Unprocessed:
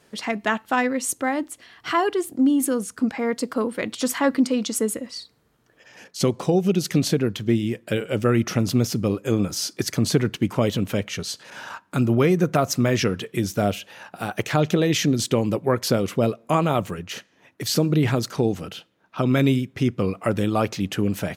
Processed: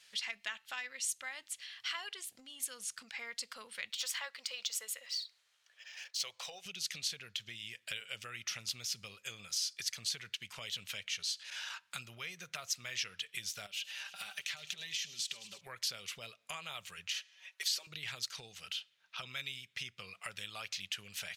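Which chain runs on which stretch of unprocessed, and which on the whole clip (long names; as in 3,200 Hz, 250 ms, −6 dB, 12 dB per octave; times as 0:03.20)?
0:03.91–0:06.66: low shelf with overshoot 380 Hz −13 dB, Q 1.5 + linearly interpolated sample-rate reduction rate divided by 2×
0:13.66–0:15.61: comb filter 5.1 ms, depth 62% + downward compressor 12 to 1, threshold −28 dBFS + delay with a high-pass on its return 105 ms, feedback 71%, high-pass 3,000 Hz, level −15.5 dB
0:17.14–0:17.87: high-pass filter 380 Hz 24 dB per octave + comb filter 5.3 ms, depth 88%
whole clip: meter weighting curve D; downward compressor 3 to 1, threshold −29 dBFS; guitar amp tone stack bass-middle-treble 10-0-10; level −6 dB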